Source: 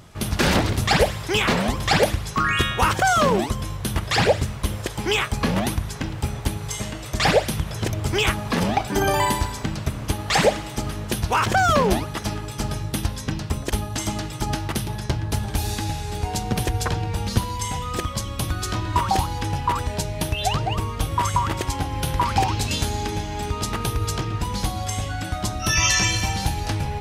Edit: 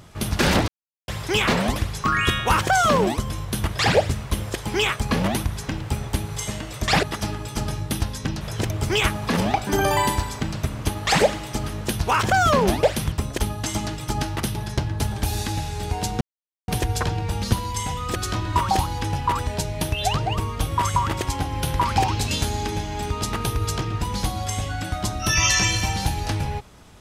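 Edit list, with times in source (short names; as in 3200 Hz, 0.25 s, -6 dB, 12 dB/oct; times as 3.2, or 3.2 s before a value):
0.68–1.08 mute
1.76–2.08 cut
7.35–7.64 swap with 12.06–13.44
16.53 insert silence 0.47 s
18.01–18.56 cut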